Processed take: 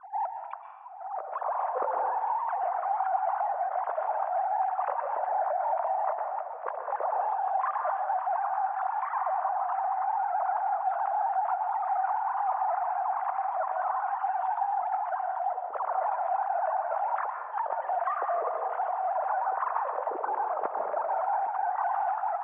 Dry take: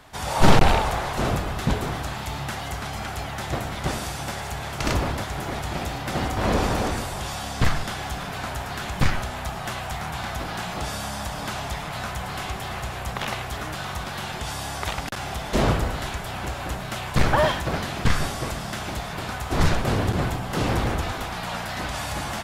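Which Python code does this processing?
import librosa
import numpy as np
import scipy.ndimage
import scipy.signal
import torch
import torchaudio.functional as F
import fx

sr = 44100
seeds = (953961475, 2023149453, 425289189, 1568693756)

p1 = fx.sine_speech(x, sr)
p2 = fx.spec_gate(p1, sr, threshold_db=-25, keep='strong')
p3 = scipy.signal.sosfilt(scipy.signal.butter(4, 1000.0, 'lowpass', fs=sr, output='sos'), p2)
p4 = fx.low_shelf(p3, sr, hz=470.0, db=-3.5)
p5 = fx.notch(p4, sr, hz=540.0, q=12.0)
p6 = fx.over_compress(p5, sr, threshold_db=-31.0, ratio=-0.5)
p7 = p6 + fx.echo_single(p6, sr, ms=811, db=-18.0, dry=0)
y = fx.rev_plate(p7, sr, seeds[0], rt60_s=1.1, hf_ratio=0.9, predelay_ms=110, drr_db=4.5)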